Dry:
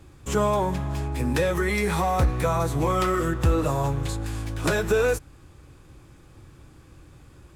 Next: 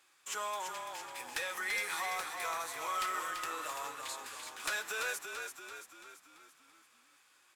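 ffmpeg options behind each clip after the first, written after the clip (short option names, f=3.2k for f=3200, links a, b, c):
-filter_complex "[0:a]highpass=1.4k,aeval=exprs='clip(val(0),-1,0.0596)':c=same,asplit=2[a][b];[b]asplit=6[c][d][e][f][g][h];[c]adelay=337,afreqshift=-33,volume=-6dB[i];[d]adelay=674,afreqshift=-66,volume=-11.8dB[j];[e]adelay=1011,afreqshift=-99,volume=-17.7dB[k];[f]adelay=1348,afreqshift=-132,volume=-23.5dB[l];[g]adelay=1685,afreqshift=-165,volume=-29.4dB[m];[h]adelay=2022,afreqshift=-198,volume=-35.2dB[n];[i][j][k][l][m][n]amix=inputs=6:normalize=0[o];[a][o]amix=inputs=2:normalize=0,volume=-5dB"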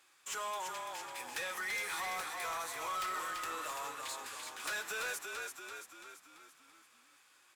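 -af "asoftclip=type=tanh:threshold=-34dB,volume=1dB"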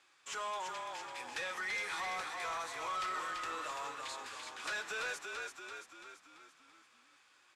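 -af "lowpass=6.2k"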